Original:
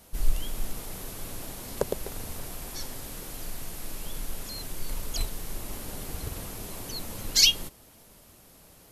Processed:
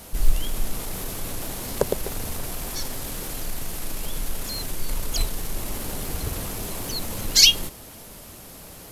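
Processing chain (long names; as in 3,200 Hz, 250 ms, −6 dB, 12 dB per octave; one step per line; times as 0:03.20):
mu-law and A-law mismatch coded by mu
level +5 dB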